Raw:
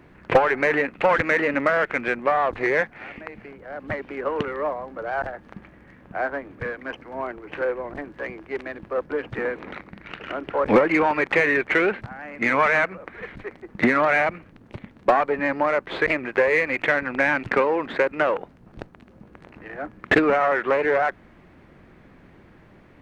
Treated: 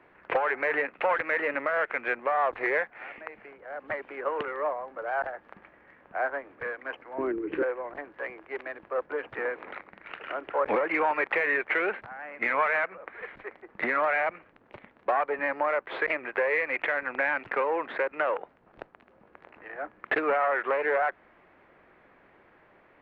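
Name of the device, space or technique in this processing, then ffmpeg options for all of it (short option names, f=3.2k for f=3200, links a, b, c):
DJ mixer with the lows and highs turned down: -filter_complex "[0:a]asettb=1/sr,asplit=3[a][b][c];[a]atrim=end=7.184[d];[b]atrim=start=7.18:end=7.63,asetpts=PTS-STARTPTS,afade=t=in:d=0.004:c=qsin,afade=t=out:st=0.446:d=0.004:c=qsin,lowshelf=f=490:t=q:w=3:g=12.5[e];[c]atrim=start=7.626[f];[d][e]acrossfade=d=0.004:c1=hsin:c2=qsin[g];[g][f]acrossfade=d=0.004:c1=qsin:c2=hsin,acrossover=split=410 3100:gain=0.141 1 0.1[h][i][j];[h][i][j]amix=inputs=3:normalize=0,alimiter=limit=-14.5dB:level=0:latency=1:release=174,volume=-2dB"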